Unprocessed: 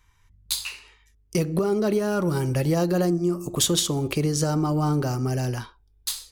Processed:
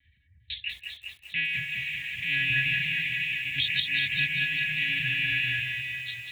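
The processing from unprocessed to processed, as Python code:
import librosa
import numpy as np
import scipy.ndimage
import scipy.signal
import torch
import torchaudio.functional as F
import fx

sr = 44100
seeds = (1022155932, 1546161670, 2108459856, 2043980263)

y = fx.rattle_buzz(x, sr, strikes_db=-35.0, level_db=-16.0)
y = fx.brickwall_bandstop(y, sr, low_hz=150.0, high_hz=1600.0)
y = fx.high_shelf(y, sr, hz=2600.0, db=-5.5)
y = fx.echo_feedback(y, sr, ms=173, feedback_pct=34, wet_db=-12.0)
y = fx.dereverb_blind(y, sr, rt60_s=1.7)
y = fx.lpc_monotone(y, sr, seeds[0], pitch_hz=280.0, order=16)
y = scipy.signal.sosfilt(scipy.signal.butter(4, 62.0, 'highpass', fs=sr, output='sos'), y)
y = fx.peak_eq(y, sr, hz=220.0, db=2.5, octaves=1.7)
y = fx.hum_notches(y, sr, base_hz=50, count=3)
y = fx.echo_alternate(y, sr, ms=199, hz=1900.0, feedback_pct=66, wet_db=-3.5)
y = fx.echo_crushed(y, sr, ms=194, feedback_pct=35, bits=9, wet_db=-6)
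y = y * 10.0 ** (3.5 / 20.0)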